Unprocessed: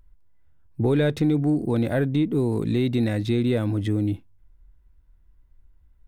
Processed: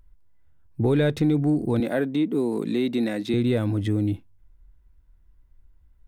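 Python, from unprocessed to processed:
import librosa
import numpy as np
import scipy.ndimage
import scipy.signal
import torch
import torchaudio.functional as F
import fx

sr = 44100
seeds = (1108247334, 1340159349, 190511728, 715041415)

y = fx.highpass(x, sr, hz=190.0, slope=24, at=(1.8, 3.34))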